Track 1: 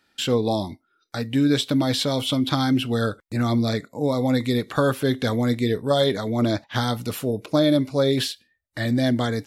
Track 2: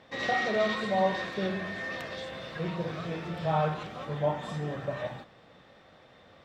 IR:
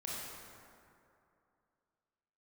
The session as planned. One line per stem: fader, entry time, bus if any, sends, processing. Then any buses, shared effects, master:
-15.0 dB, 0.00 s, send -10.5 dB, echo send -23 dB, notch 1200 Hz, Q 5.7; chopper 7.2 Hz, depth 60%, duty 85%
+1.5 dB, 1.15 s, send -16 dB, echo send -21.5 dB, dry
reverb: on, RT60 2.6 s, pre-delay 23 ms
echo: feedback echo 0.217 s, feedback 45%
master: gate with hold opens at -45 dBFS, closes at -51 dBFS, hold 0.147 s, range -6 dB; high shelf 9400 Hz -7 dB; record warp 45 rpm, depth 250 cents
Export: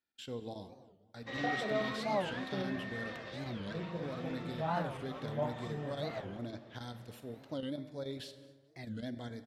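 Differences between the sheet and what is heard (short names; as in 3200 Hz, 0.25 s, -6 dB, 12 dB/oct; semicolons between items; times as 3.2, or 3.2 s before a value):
stem 1 -15.0 dB -> -22.0 dB; stem 2 +1.5 dB -> -8.0 dB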